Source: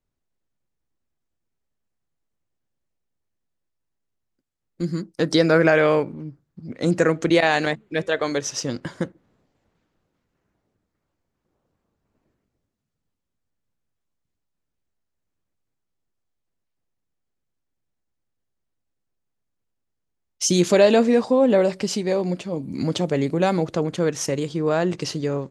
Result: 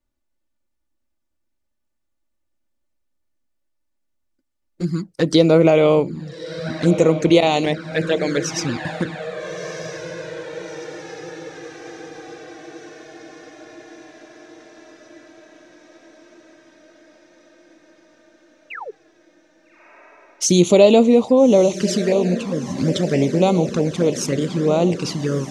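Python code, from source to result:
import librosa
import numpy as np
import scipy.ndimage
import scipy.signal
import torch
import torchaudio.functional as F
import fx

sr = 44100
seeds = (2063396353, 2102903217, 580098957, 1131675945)

y = fx.spec_paint(x, sr, seeds[0], shape='fall', start_s=18.7, length_s=0.21, low_hz=370.0, high_hz=2900.0, level_db=-34.0)
y = fx.echo_diffused(y, sr, ms=1289, feedback_pct=66, wet_db=-11.5)
y = fx.env_flanger(y, sr, rest_ms=3.4, full_db=-16.5)
y = y * 10.0 ** (5.0 / 20.0)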